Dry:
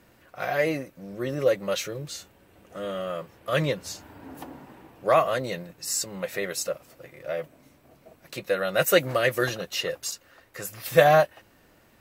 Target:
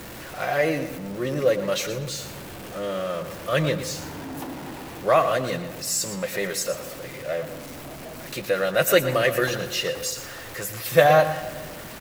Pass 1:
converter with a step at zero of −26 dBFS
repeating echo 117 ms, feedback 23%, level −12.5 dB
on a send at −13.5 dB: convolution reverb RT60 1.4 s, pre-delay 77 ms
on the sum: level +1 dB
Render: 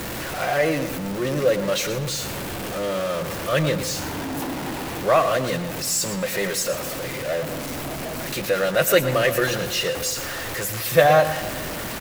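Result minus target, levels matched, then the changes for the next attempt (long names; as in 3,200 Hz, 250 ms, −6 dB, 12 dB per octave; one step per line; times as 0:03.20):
converter with a step at zero: distortion +8 dB
change: converter with a step at zero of −35 dBFS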